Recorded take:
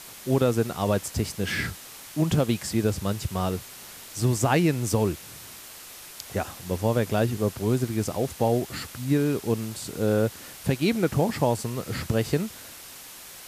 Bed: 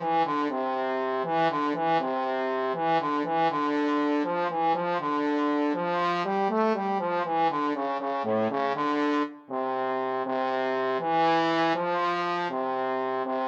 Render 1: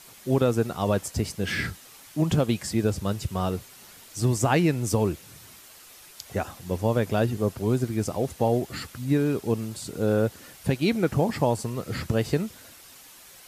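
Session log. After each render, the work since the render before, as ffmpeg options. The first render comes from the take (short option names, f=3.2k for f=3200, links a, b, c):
-af "afftdn=nr=7:nf=-44"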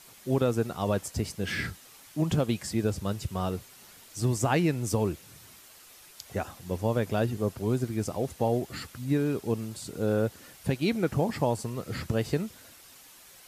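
-af "volume=-3.5dB"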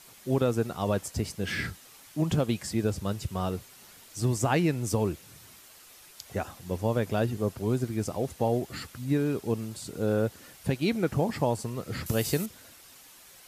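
-filter_complex "[0:a]asettb=1/sr,asplit=3[a][b][c];[a]atrim=end=12.064[d];[b]atrim=start=12.06:end=12.46,asetpts=PTS-STARTPTS,afade=t=in:d=0.004:c=qsin,afade=t=out:st=0.396:d=0.004:c=qsin,aemphasis=mode=production:type=75kf[e];[c]atrim=start=12.456[f];[d][e]acrossfade=d=0.004:c1=hsin:c2=qsin[g];[g][f]acrossfade=d=0.004:c1=qsin:c2=hsin"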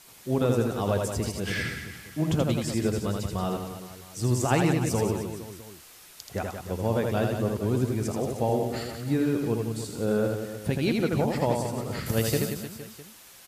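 -af "aecho=1:1:80|180|305|461.2|656.6:0.631|0.398|0.251|0.158|0.1"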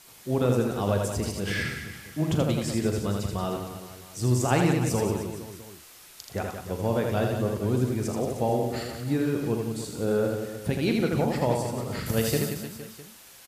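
-filter_complex "[0:a]asplit=2[a][b];[b]adelay=40,volume=-10.5dB[c];[a][c]amix=inputs=2:normalize=0"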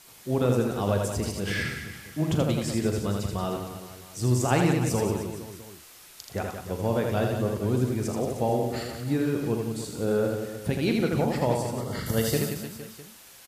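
-filter_complex "[0:a]asettb=1/sr,asplit=3[a][b][c];[a]atrim=end=11.804[d];[b]atrim=start=11.8:end=12.34,asetpts=PTS-STARTPTS,afade=t=in:d=0.004:c=qsin,afade=t=out:st=0.536:d=0.004:c=qsin,asuperstop=centerf=2500:order=8:qfactor=6.3[e];[c]atrim=start=12.336[f];[d][e]acrossfade=d=0.004:c1=hsin:c2=qsin[g];[g][f]acrossfade=d=0.004:c1=qsin:c2=hsin"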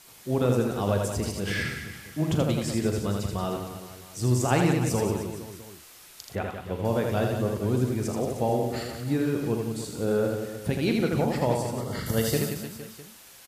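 -filter_complex "[0:a]asettb=1/sr,asplit=3[a][b][c];[a]atrim=end=6.354[d];[b]atrim=start=6.35:end=6.85,asetpts=PTS-STARTPTS,afade=t=in:d=0.004:c=qsin,afade=t=out:st=0.496:d=0.004:c=qsin,highshelf=f=4.2k:t=q:w=1.5:g=-8.5[e];[c]atrim=start=6.846[f];[d][e]acrossfade=d=0.004:c1=hsin:c2=qsin[g];[g][f]acrossfade=d=0.004:c1=qsin:c2=hsin"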